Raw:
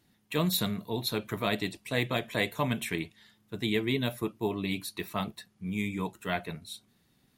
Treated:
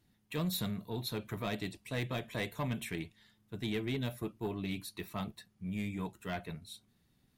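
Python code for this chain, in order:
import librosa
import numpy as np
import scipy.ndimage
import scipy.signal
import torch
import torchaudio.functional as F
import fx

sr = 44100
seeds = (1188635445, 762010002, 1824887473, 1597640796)

y = fx.low_shelf(x, sr, hz=120.0, db=10.0)
y = 10.0 ** (-21.0 / 20.0) * np.tanh(y / 10.0 ** (-21.0 / 20.0))
y = y * 10.0 ** (-6.5 / 20.0)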